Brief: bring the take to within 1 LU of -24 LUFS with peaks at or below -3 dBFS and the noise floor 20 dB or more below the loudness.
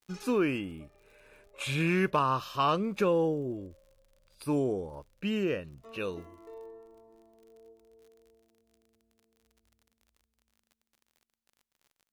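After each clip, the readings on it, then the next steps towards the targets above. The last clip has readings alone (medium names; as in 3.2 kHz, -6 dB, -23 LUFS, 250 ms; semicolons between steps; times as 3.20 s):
tick rate 47 per s; loudness -30.5 LUFS; peak level -16.5 dBFS; loudness target -24.0 LUFS
-> de-click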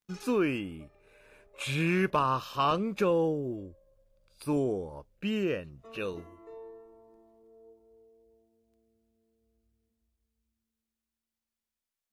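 tick rate 0.16 per s; loudness -30.5 LUFS; peak level -16.5 dBFS; loudness target -24.0 LUFS
-> trim +6.5 dB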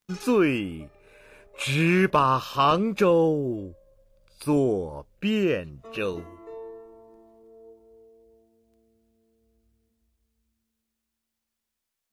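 loudness -24.0 LUFS; peak level -10.0 dBFS; noise floor -84 dBFS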